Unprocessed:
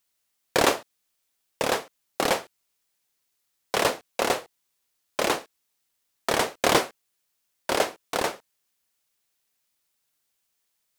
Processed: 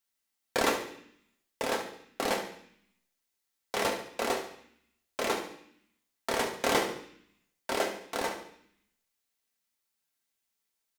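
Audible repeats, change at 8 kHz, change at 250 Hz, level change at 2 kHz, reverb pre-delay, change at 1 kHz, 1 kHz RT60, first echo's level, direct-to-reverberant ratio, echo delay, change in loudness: 1, -6.5 dB, -4.5 dB, -5.5 dB, 3 ms, -6.0 dB, 0.65 s, -11.0 dB, 1.0 dB, 70 ms, -6.0 dB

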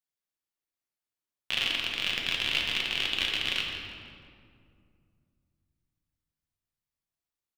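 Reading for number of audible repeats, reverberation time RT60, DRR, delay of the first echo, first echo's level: 1, 2.3 s, -1.5 dB, 0.166 s, -11.0 dB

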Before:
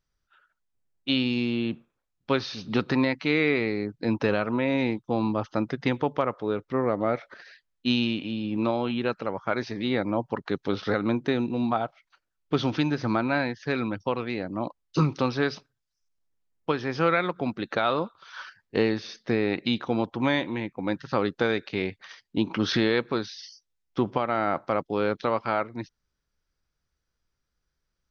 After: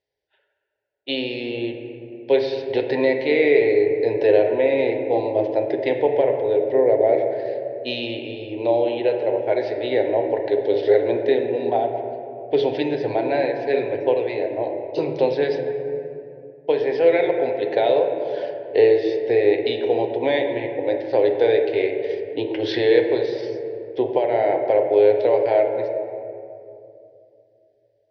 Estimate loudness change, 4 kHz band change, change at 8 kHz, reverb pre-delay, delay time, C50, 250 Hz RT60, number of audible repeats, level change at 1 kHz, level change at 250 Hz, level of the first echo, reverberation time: +6.5 dB, 0.0 dB, n/a, 4 ms, none, 5.5 dB, 3.2 s, none, +2.5 dB, -0.5 dB, none, 2.6 s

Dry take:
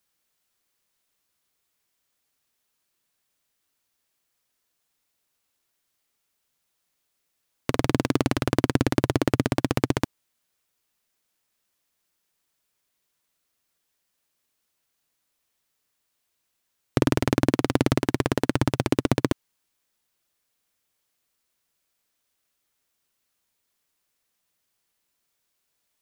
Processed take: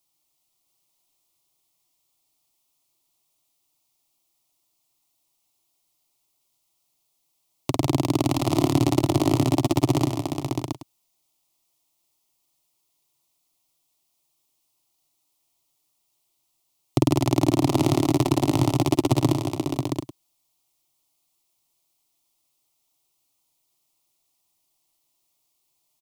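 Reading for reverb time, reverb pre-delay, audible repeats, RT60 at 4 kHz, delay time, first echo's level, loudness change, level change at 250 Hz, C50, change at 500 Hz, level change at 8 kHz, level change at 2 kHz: none, none, 6, none, 50 ms, -19.5 dB, +1.5 dB, +3.0 dB, none, +1.0 dB, +4.5 dB, -6.0 dB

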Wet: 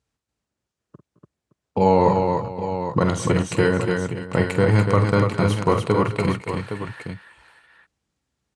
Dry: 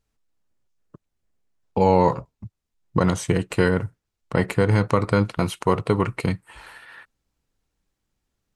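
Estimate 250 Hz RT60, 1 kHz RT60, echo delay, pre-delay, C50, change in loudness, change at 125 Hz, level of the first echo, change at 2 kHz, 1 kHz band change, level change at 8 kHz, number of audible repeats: none, none, 47 ms, none, none, +1.5 dB, +2.5 dB, -9.0 dB, +2.0 dB, +2.0 dB, +1.5 dB, 5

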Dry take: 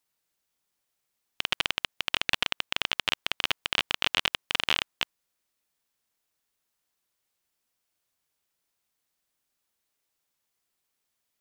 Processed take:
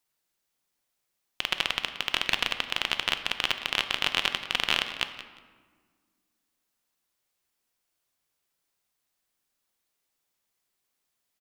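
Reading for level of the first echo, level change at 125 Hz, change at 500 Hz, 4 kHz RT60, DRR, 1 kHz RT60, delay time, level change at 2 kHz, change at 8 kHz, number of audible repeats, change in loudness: -14.5 dB, +0.5 dB, +1.0 dB, 0.90 s, 7.5 dB, 1.5 s, 0.178 s, +0.5 dB, +0.5 dB, 2, +0.5 dB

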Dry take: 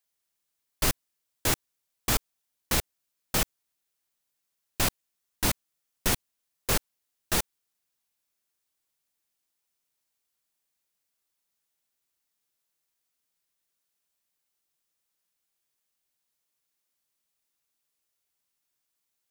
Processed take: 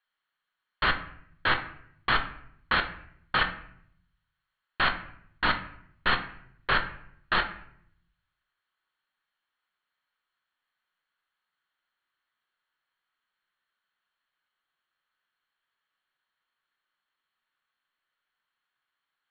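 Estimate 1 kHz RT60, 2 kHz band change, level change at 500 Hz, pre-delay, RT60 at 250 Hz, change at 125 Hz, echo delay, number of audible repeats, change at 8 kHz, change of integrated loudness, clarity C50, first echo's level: 0.60 s, +9.0 dB, -2.0 dB, 5 ms, 0.85 s, -5.0 dB, none, none, under -40 dB, +0.5 dB, 10.5 dB, none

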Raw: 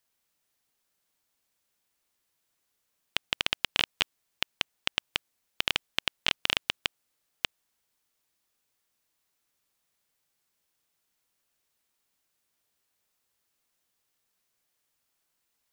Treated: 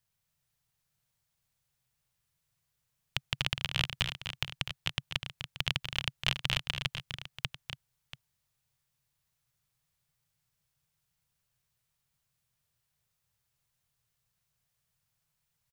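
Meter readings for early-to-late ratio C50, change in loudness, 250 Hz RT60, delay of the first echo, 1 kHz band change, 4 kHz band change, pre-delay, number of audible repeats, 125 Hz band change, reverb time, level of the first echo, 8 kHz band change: none, -3.5 dB, none, 0.25 s, -4.0 dB, -3.5 dB, none, 3, +12.5 dB, none, -9.0 dB, -3.5 dB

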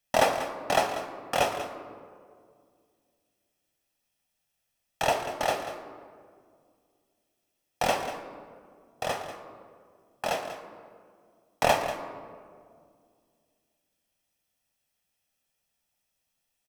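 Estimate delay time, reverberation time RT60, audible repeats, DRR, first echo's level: 0.19 s, 2.1 s, 1, 6.5 dB, -12.0 dB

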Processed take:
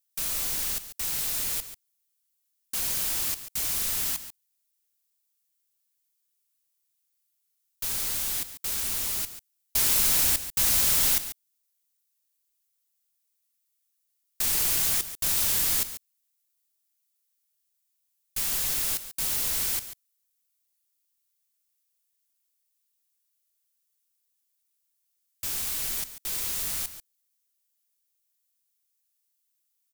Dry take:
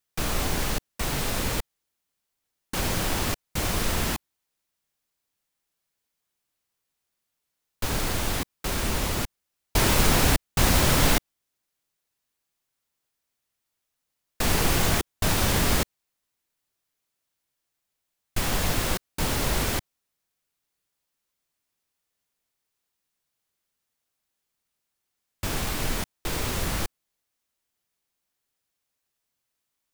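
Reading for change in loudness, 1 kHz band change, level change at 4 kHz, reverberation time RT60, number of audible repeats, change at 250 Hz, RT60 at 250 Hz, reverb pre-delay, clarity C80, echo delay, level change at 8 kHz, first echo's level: +1.0 dB, -12.5 dB, -2.5 dB, none, 1, -16.5 dB, none, none, none, 0.141 s, +3.0 dB, -12.5 dB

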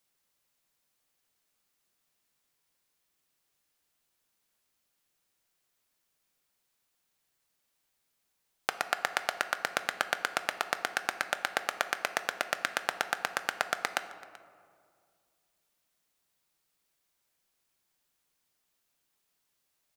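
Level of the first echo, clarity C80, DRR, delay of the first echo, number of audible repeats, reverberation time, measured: -22.0 dB, 13.0 dB, 9.5 dB, 0.383 s, 1, 2.1 s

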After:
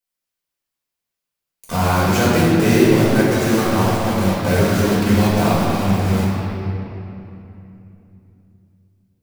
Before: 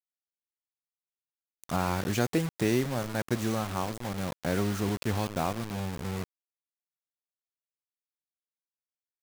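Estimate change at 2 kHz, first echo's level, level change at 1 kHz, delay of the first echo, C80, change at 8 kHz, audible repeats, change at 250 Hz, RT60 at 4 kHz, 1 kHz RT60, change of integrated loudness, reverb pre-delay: +14.0 dB, none, +13.5 dB, none, -1.0 dB, +12.0 dB, none, +15.0 dB, 2.0 s, 2.8 s, +14.0 dB, 4 ms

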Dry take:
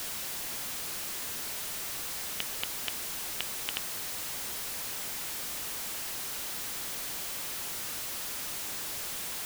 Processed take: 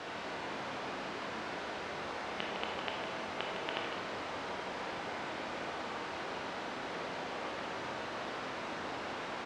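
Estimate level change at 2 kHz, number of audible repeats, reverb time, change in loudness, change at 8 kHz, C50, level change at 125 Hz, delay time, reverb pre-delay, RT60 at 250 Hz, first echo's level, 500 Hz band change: +1.5 dB, 1, 1.5 s, -6.0 dB, -21.5 dB, 1.0 dB, +1.0 dB, 0.156 s, 16 ms, 1.7 s, -7.5 dB, +9.0 dB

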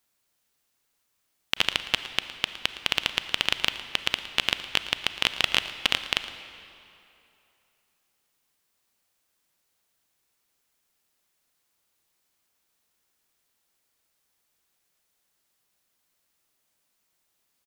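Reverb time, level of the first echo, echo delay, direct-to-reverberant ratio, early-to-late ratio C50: 2.8 s, -16.5 dB, 0.113 s, 10.0 dB, 10.5 dB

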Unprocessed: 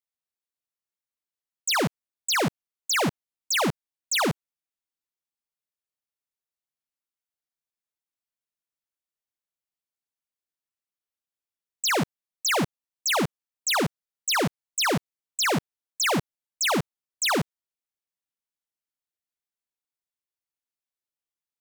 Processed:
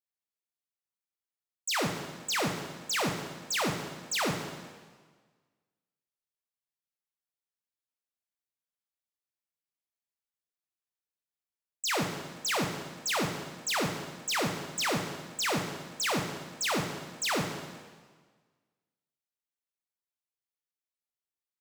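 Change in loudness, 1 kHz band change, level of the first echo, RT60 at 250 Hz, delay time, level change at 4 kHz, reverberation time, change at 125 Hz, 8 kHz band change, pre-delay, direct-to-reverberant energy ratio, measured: -6.0 dB, -5.0 dB, none, 1.5 s, none, -5.5 dB, 1.5 s, -5.0 dB, -5.5 dB, 8 ms, 3.0 dB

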